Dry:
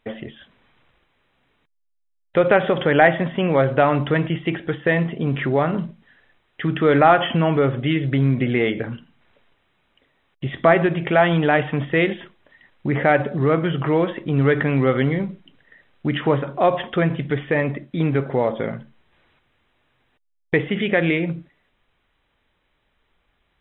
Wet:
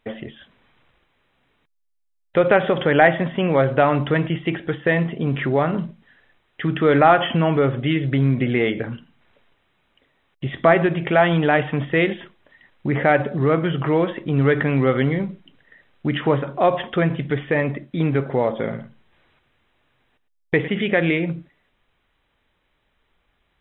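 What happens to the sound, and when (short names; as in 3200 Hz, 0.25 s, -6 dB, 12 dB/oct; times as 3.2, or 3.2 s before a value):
18.48–20.68 echo 0.107 s -13.5 dB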